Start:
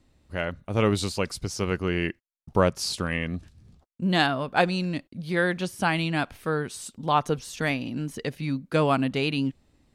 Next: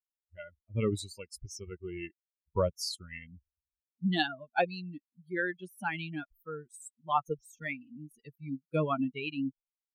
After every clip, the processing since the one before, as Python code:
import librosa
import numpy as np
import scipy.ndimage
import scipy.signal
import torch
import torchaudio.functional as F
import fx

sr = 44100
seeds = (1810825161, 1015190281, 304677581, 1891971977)

y = fx.bin_expand(x, sr, power=3.0)
y = y * librosa.db_to_amplitude(-2.0)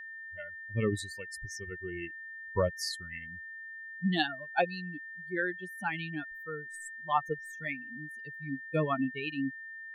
y = x + 10.0 ** (-42.0 / 20.0) * np.sin(2.0 * np.pi * 1800.0 * np.arange(len(x)) / sr)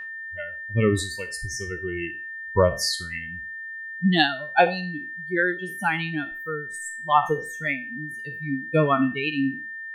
y = fx.spec_trails(x, sr, decay_s=0.33)
y = y * librosa.db_to_amplitude(9.0)